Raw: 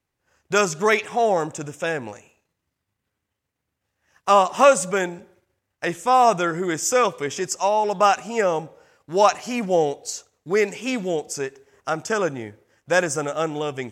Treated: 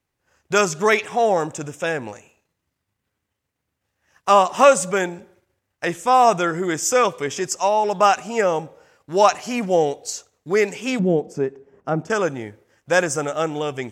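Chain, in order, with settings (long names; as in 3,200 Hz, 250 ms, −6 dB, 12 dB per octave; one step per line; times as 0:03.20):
0:10.99–0:12.10: drawn EQ curve 110 Hz 0 dB, 170 Hz +11 dB, 7,000 Hz −18 dB
level +1.5 dB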